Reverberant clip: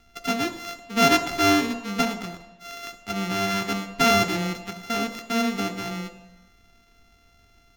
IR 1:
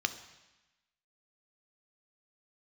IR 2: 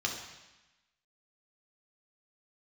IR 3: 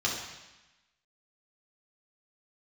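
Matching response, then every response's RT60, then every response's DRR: 1; 1.0, 1.0, 1.0 s; 8.5, -1.0, -5.0 dB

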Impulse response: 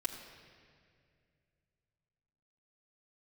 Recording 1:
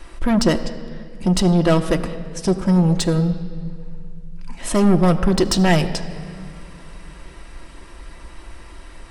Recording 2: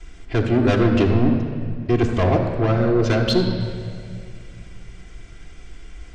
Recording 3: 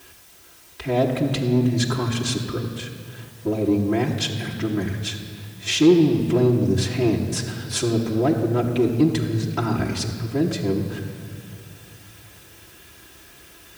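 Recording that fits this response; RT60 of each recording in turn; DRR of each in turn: 3; 2.2, 2.2, 2.2 s; 5.0, -12.0, -4.5 dB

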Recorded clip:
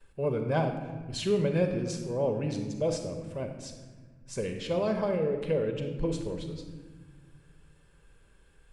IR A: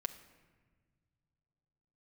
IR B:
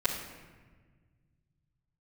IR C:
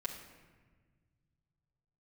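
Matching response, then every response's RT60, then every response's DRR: B; 1.5, 1.4, 1.4 s; 4.5, -13.5, -4.5 dB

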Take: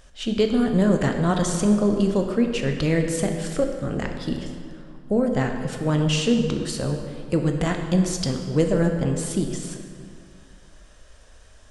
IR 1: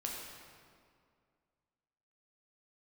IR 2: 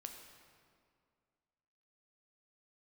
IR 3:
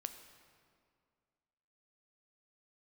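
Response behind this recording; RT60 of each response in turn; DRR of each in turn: 2; 2.2, 2.2, 2.2 s; -2.0, 3.5, 8.0 dB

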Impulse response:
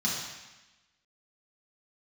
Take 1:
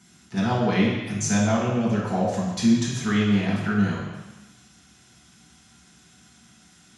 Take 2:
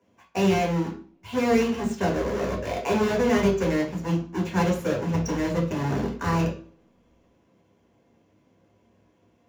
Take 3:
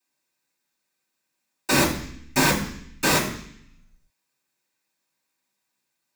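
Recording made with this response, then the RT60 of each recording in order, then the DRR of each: 1; 1.0, 0.45, 0.65 s; -6.0, -2.5, -14.0 dB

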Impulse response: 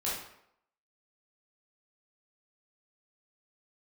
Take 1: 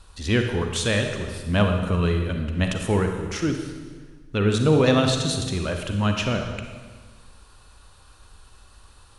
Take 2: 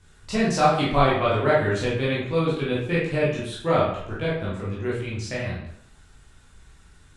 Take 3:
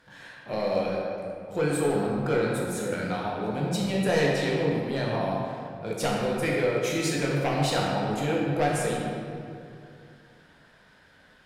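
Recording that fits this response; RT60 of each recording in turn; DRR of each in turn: 2; 1.5, 0.75, 2.5 s; 4.0, -8.0, -4.0 dB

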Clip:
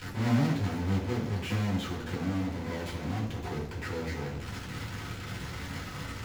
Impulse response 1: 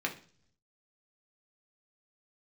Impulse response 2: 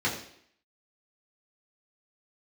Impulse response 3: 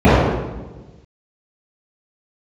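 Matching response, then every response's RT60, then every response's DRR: 2; not exponential, 0.65 s, 1.2 s; 0.5, -6.5, -18.5 dB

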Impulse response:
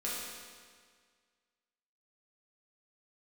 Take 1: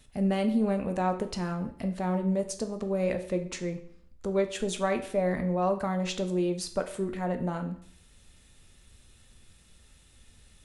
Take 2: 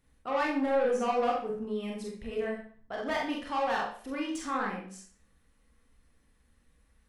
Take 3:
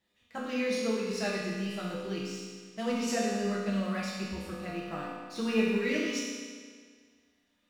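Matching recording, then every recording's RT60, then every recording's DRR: 3; 0.60, 0.45, 1.8 s; 6.5, -2.0, -7.5 dB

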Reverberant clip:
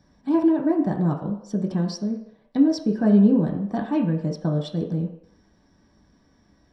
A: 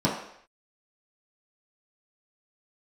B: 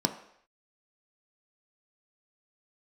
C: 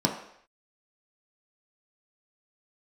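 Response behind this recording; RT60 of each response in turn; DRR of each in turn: C; not exponential, not exponential, not exponential; -7.0, 5.5, 0.0 dB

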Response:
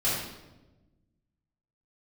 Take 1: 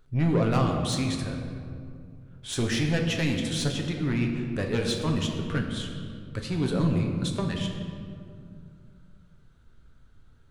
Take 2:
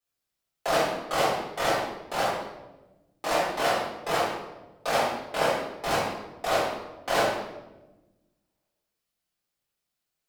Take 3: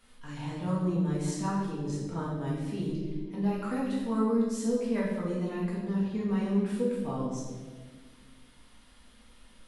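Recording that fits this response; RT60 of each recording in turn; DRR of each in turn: 2; 2.4, 1.1, 1.5 s; 1.5, -11.0, -6.5 dB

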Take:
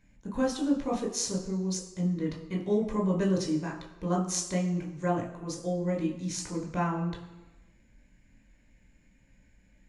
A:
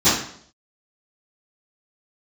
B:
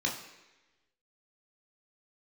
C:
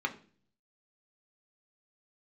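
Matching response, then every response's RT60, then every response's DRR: B; 0.60, 1.1, 0.45 s; -19.5, -1.5, 3.0 dB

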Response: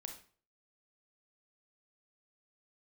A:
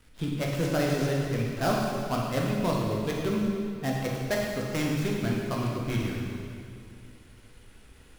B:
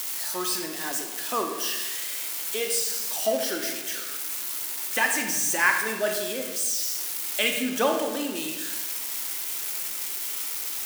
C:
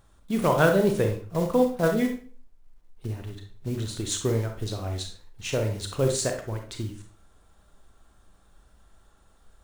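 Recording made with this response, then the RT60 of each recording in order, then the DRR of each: C; 2.4, 1.3, 0.45 s; -3.0, 3.0, 4.0 dB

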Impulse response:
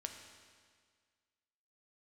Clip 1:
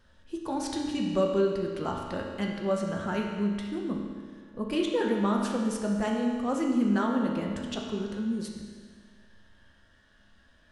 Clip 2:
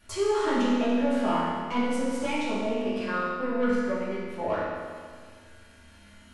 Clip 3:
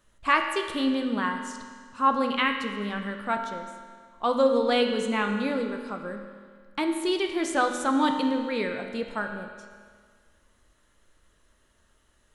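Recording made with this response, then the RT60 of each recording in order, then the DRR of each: 3; 1.8, 1.8, 1.8 s; -1.0, -11.0, 4.0 dB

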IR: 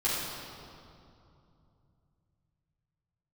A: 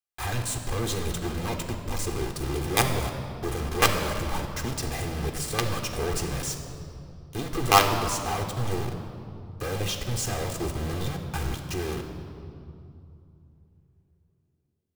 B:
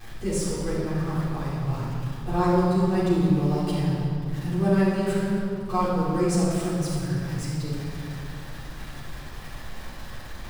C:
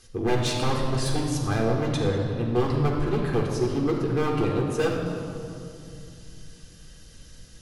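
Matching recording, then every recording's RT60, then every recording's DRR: B; 2.7, 2.7, 2.7 s; 5.0, -10.0, -0.5 dB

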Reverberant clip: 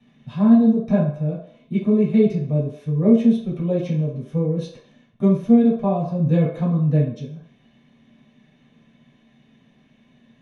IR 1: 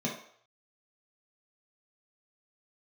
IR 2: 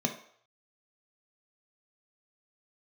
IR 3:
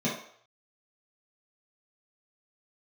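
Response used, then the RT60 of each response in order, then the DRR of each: 3; 0.60, 0.60, 0.60 s; -3.5, 3.5, -8.0 dB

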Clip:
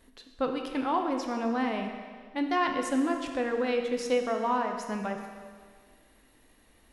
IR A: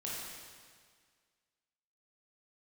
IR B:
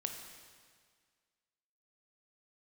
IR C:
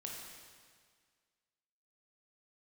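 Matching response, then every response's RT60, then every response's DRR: B; 1.8, 1.8, 1.8 s; -6.5, 3.5, -2.0 dB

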